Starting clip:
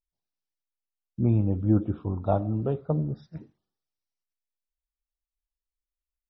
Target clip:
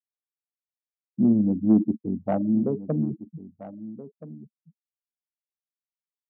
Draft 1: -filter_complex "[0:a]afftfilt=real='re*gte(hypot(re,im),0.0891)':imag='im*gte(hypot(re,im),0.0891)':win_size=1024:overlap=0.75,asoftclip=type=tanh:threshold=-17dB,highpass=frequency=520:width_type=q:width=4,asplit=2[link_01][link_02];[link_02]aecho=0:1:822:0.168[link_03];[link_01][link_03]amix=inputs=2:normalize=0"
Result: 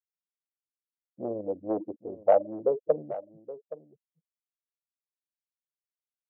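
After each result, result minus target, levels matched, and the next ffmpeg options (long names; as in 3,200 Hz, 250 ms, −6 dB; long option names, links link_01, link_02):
250 Hz band −11.5 dB; echo 504 ms early
-filter_complex "[0:a]afftfilt=real='re*gte(hypot(re,im),0.0891)':imag='im*gte(hypot(re,im),0.0891)':win_size=1024:overlap=0.75,asoftclip=type=tanh:threshold=-17dB,highpass=frequency=220:width_type=q:width=4,asplit=2[link_01][link_02];[link_02]aecho=0:1:822:0.168[link_03];[link_01][link_03]amix=inputs=2:normalize=0"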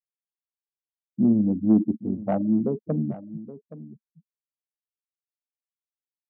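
echo 504 ms early
-filter_complex "[0:a]afftfilt=real='re*gte(hypot(re,im),0.0891)':imag='im*gte(hypot(re,im),0.0891)':win_size=1024:overlap=0.75,asoftclip=type=tanh:threshold=-17dB,highpass=frequency=220:width_type=q:width=4,asplit=2[link_01][link_02];[link_02]aecho=0:1:1326:0.168[link_03];[link_01][link_03]amix=inputs=2:normalize=0"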